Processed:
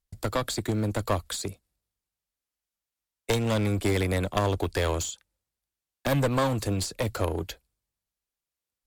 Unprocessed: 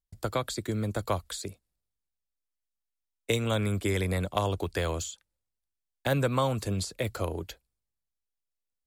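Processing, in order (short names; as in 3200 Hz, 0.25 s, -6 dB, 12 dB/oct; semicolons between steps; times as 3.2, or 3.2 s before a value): one-sided clip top -33.5 dBFS; gain +5 dB; Vorbis 128 kbps 44100 Hz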